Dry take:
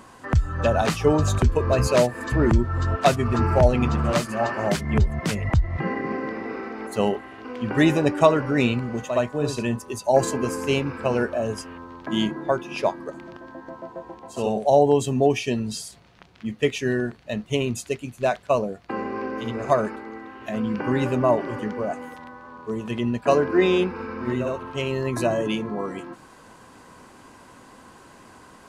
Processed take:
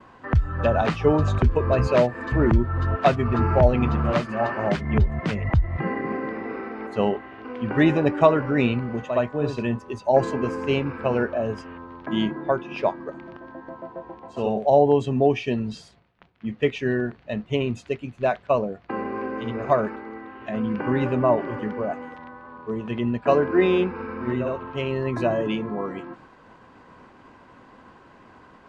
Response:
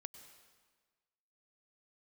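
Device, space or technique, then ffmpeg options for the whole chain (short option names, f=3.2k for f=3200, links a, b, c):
hearing-loss simulation: -af "lowpass=2.9k,agate=range=-33dB:threshold=-46dB:ratio=3:detection=peak"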